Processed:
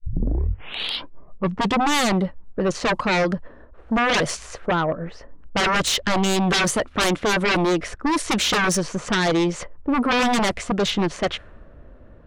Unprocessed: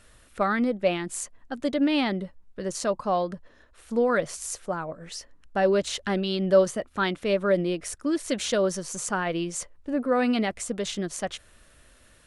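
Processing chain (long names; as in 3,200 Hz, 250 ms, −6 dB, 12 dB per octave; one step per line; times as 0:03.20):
turntable start at the beginning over 2.01 s
low-pass that shuts in the quiet parts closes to 620 Hz, open at −21.5 dBFS
sine wavefolder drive 17 dB, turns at −8.5 dBFS
level −7.5 dB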